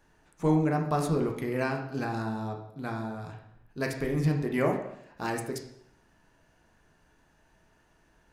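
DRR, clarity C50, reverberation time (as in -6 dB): 1.5 dB, 6.5 dB, 0.70 s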